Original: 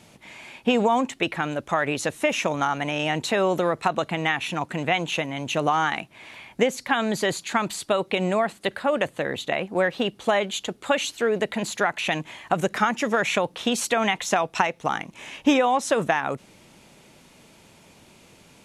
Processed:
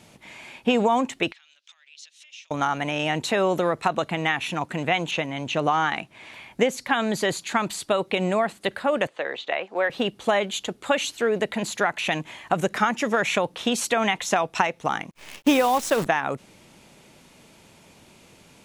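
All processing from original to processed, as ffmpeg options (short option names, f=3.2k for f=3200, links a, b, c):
-filter_complex "[0:a]asettb=1/sr,asplit=3[a][b][c];[a]atrim=end=1.324[d];[b]atrim=start=1.32:end=2.51,asetpts=PTS-STARTPTS,afade=t=in:d=0.004:c=qsin,afade=t=out:st=1.186:d=0.004:c=qsin,acompressor=threshold=-34dB:ratio=16:attack=3.2:release=140:knee=1:detection=peak,asuperpass=centerf=4200:order=4:qfactor=1.3[e];[c]atrim=start=2.506[f];[d][e]acrossfade=d=0.004:c1=hsin:c2=qsin[g];[g][f]acrossfade=d=0.004:c1=qsin:c2=hsin,asettb=1/sr,asplit=3[h][i][j];[h]atrim=end=5.114[k];[i]atrim=start=5.11:end=6.33,asetpts=PTS-STARTPTS,afade=t=in:d=0.004:c=qsin,afade=t=out:st=1.216:d=0.004:c=qsin,lowpass=11k,acrossover=split=6200[l][m];[m]acompressor=threshold=-54dB:ratio=4:attack=1:release=60[n];[l][n]amix=inputs=2:normalize=0[o];[j]atrim=start=6.326[p];[k][o]acrossfade=d=0.004:c1=hsin:c2=qsin[q];[q][p]acrossfade=d=0.004:c1=qsin:c2=hsin,asettb=1/sr,asplit=3[r][s][t];[r]atrim=end=9.074[u];[s]atrim=start=9.07:end=9.9,asetpts=PTS-STARTPTS,afade=t=in:d=0.004:c=qsin,afade=t=out:st=0.826:d=0.004:c=qsin,acrossover=split=5000[v][w];[w]acompressor=threshold=-60dB:ratio=4:attack=1:release=60[x];[v][x]amix=inputs=2:normalize=0,acrossover=split=380 7700:gain=0.0794 1 0.0891[y][z][aa];[y][z][aa]amix=inputs=3:normalize=0[ab];[t]atrim=start=9.896[ac];[u][ab]acrossfade=d=0.004:c1=hsin:c2=qsin[ad];[ad][ac]acrossfade=d=0.004:c1=qsin:c2=hsin,asettb=1/sr,asplit=3[ae][af][ag];[ae]atrim=end=15.114[ah];[af]atrim=start=15.11:end=16.06,asetpts=PTS-STARTPTS,afade=t=in:d=0.004:c=qsin,afade=t=out:st=0.946:d=0.004:c=qsin,acrusher=bits=6:dc=4:mix=0:aa=0.000001,agate=range=-33dB:threshold=-44dB:ratio=3:release=100:detection=peak[ai];[ag]atrim=start=16.056[aj];[ah][ai]acrossfade=d=0.004:c1=hsin:c2=qsin[ak];[ak][aj]acrossfade=d=0.004:c1=qsin:c2=hsin"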